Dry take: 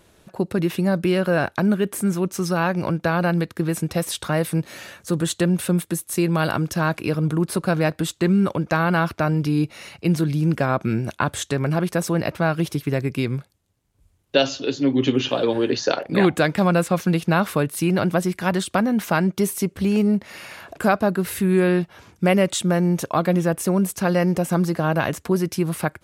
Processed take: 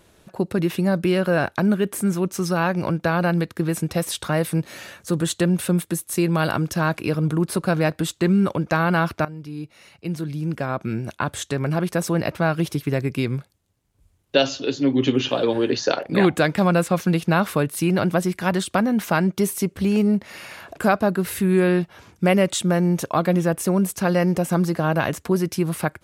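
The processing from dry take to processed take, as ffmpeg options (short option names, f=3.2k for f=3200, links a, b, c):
-filter_complex "[0:a]asplit=2[a][b];[a]atrim=end=9.25,asetpts=PTS-STARTPTS,afade=t=out:st=9.246:d=0.004:c=hsin:silence=0.149624[c];[b]atrim=start=9.25,asetpts=PTS-STARTPTS,afade=t=in:d=2.88:silence=0.149624[d];[c][d]concat=n=2:v=0:a=1"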